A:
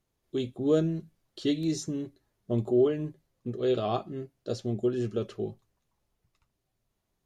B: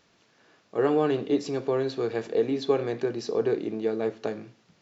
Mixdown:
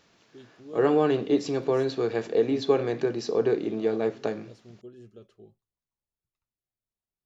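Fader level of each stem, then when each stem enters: -18.5 dB, +1.5 dB; 0.00 s, 0.00 s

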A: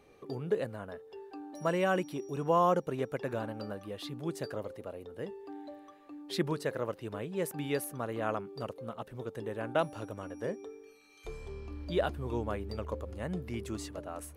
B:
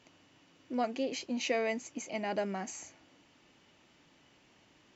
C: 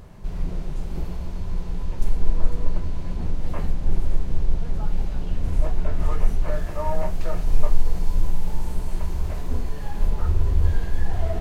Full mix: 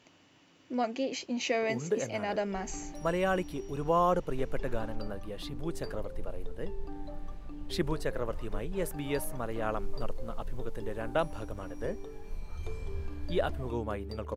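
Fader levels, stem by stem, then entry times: 0.0 dB, +1.5 dB, -18.5 dB; 1.40 s, 0.00 s, 2.30 s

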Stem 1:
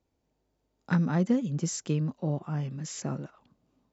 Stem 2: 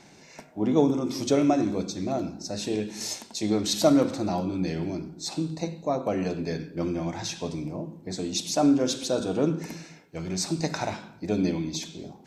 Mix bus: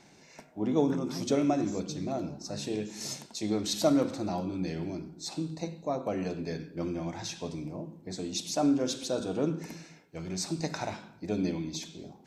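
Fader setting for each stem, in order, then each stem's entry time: -14.5 dB, -5.0 dB; 0.00 s, 0.00 s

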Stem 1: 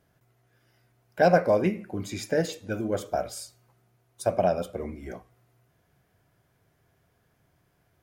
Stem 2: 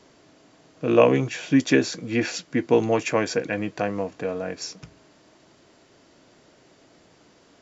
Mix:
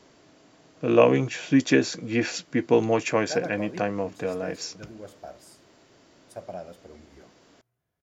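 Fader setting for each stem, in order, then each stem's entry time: -14.0 dB, -1.0 dB; 2.10 s, 0.00 s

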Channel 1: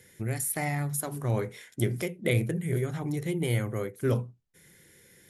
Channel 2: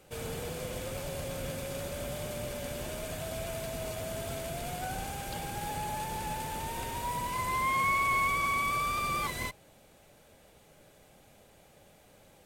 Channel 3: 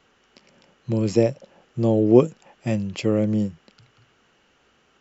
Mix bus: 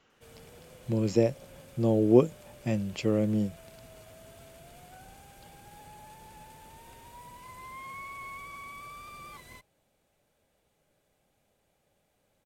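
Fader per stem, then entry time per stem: mute, -14.5 dB, -5.5 dB; mute, 0.10 s, 0.00 s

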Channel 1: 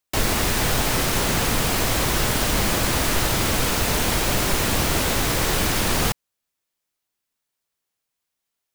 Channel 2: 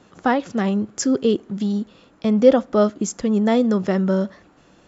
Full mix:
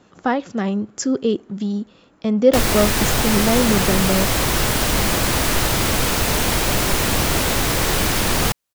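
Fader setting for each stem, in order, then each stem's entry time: +2.5 dB, -1.0 dB; 2.40 s, 0.00 s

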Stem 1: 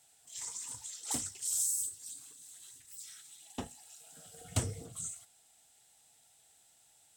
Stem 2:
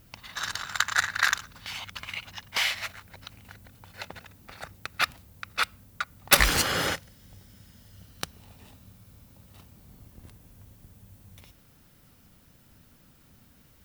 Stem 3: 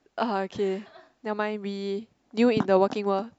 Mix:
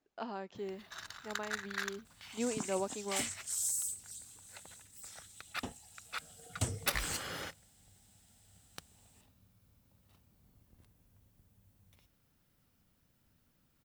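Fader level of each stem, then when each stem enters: -2.5 dB, -15.0 dB, -14.5 dB; 2.05 s, 0.55 s, 0.00 s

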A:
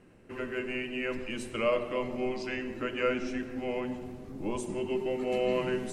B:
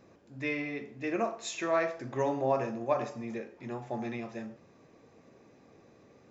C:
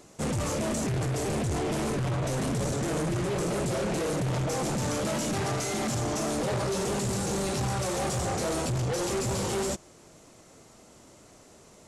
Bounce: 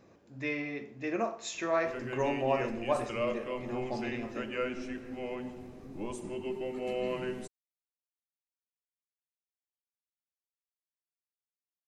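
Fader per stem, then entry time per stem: -5.0 dB, -1.0 dB, mute; 1.55 s, 0.00 s, mute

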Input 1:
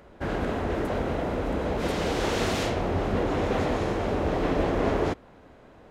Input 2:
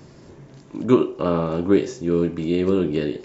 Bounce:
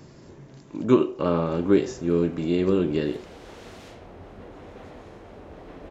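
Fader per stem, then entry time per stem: -17.5 dB, -2.0 dB; 1.25 s, 0.00 s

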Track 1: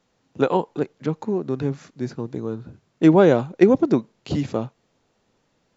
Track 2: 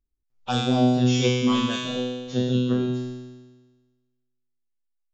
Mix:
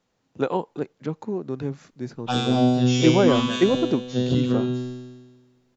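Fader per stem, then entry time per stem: -4.5 dB, +0.5 dB; 0.00 s, 1.80 s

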